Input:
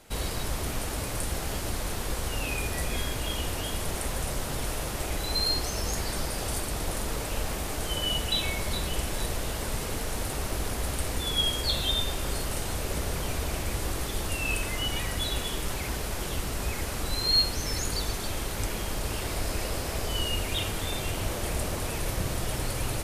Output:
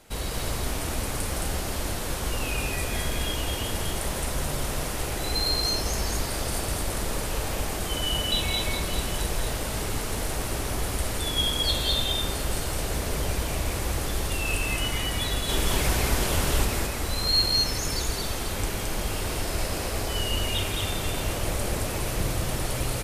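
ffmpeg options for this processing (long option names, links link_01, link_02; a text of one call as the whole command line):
ffmpeg -i in.wav -filter_complex "[0:a]asettb=1/sr,asplit=3[link_01][link_02][link_03];[link_01]atrim=end=15.494[link_04];[link_02]atrim=start=15.49:end=16.65,asetpts=PTS-STARTPTS,afade=type=in:duration=0.004:curve=qsin,afade=type=out:start_time=1.156:duration=0.004:curve=qsin,acontrast=37[link_05];[link_03]atrim=start=16.646[link_06];[link_04][link_05]acrossfade=duration=0.004:curve1=hsin:curve2=qsin[link_07];[link_07][link_06]acrossfade=duration=0.004:curve1=qsin:curve2=hsin,aecho=1:1:163.3|218.7:0.355|0.794" out.wav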